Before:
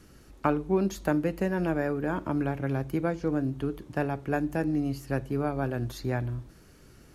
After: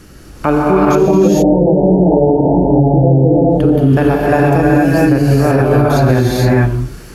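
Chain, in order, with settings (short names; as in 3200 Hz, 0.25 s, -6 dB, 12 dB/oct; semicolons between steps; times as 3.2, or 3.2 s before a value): 0.95–3.51 Chebyshev low-pass 900 Hz, order 8; dynamic EQ 500 Hz, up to +3 dB, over -40 dBFS, Q 2.4; non-linear reverb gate 0.49 s rising, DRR -5.5 dB; maximiser +15.5 dB; gain -1 dB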